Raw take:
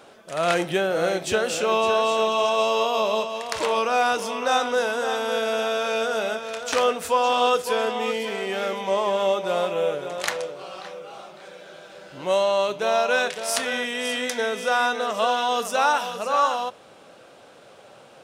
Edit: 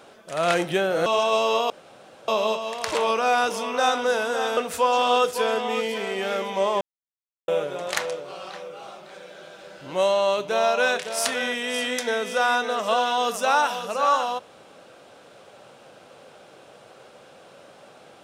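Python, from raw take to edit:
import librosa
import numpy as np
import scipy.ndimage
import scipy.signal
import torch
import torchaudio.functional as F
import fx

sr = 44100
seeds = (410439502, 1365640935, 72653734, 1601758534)

y = fx.edit(x, sr, fx.cut(start_s=1.06, length_s=1.26),
    fx.insert_room_tone(at_s=2.96, length_s=0.58),
    fx.cut(start_s=5.25, length_s=1.63),
    fx.silence(start_s=9.12, length_s=0.67), tone=tone)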